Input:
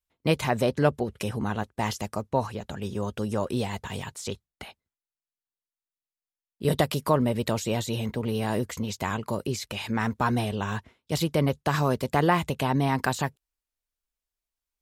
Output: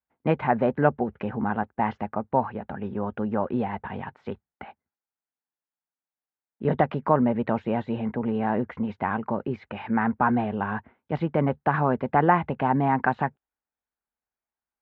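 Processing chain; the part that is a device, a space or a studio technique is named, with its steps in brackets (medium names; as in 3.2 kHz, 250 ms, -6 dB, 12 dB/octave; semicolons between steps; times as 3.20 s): bass cabinet (cabinet simulation 81–2100 Hz, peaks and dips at 110 Hz -5 dB, 230 Hz +5 dB, 810 Hz +8 dB, 1.5 kHz +4 dB)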